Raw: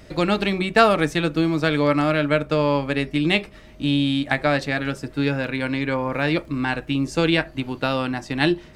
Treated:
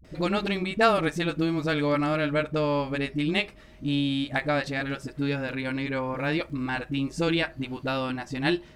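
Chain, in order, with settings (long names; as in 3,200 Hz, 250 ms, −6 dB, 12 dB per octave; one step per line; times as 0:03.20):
all-pass dispersion highs, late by 47 ms, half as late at 350 Hz
level −5.5 dB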